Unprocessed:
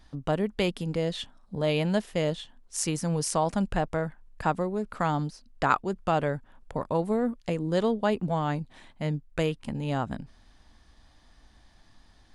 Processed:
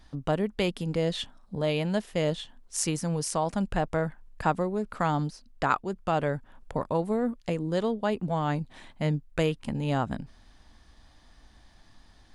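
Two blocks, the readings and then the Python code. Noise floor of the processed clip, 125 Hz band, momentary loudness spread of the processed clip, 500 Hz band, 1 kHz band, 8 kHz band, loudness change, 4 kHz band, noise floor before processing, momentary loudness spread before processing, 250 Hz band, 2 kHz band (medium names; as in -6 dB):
-57 dBFS, 0.0 dB, 7 LU, -0.5 dB, -0.5 dB, 0.0 dB, -0.5 dB, 0.0 dB, -59 dBFS, 10 LU, -0.5 dB, -0.5 dB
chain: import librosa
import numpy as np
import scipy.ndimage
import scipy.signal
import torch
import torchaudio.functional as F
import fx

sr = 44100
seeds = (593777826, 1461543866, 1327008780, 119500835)

y = fx.rider(x, sr, range_db=3, speed_s=0.5)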